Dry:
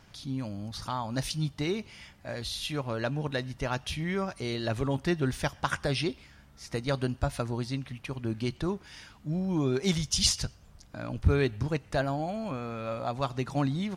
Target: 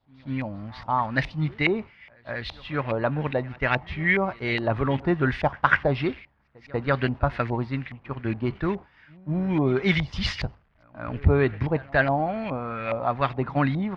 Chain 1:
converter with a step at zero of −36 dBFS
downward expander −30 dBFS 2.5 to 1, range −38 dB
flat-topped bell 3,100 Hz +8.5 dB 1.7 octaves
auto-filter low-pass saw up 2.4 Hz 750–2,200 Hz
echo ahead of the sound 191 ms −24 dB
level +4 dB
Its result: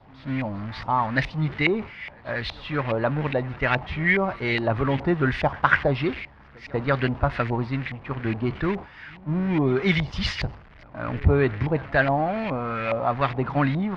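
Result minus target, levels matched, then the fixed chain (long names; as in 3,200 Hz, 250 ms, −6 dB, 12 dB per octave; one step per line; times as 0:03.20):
converter with a step at zero: distortion +10 dB
converter with a step at zero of −47 dBFS
downward expander −30 dBFS 2.5 to 1, range −38 dB
flat-topped bell 3,100 Hz +8.5 dB 1.7 octaves
auto-filter low-pass saw up 2.4 Hz 750–2,200 Hz
echo ahead of the sound 191 ms −24 dB
level +4 dB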